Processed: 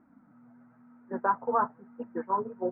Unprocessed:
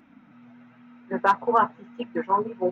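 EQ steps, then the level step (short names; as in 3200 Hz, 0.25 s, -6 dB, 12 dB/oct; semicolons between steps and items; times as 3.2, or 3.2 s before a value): inverse Chebyshev low-pass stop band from 3900 Hz, stop band 50 dB; -6.0 dB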